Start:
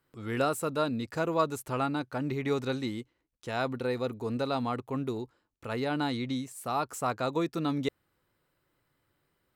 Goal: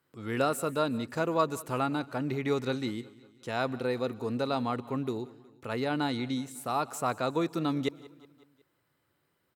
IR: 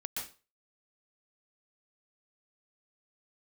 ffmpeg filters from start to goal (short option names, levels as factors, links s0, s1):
-filter_complex "[0:a]highpass=91,aecho=1:1:183|366|549|732:0.0891|0.0499|0.0279|0.0157,asplit=2[s0][s1];[1:a]atrim=start_sample=2205,highshelf=f=9500:g=8.5[s2];[s1][s2]afir=irnorm=-1:irlink=0,volume=0.0708[s3];[s0][s3]amix=inputs=2:normalize=0"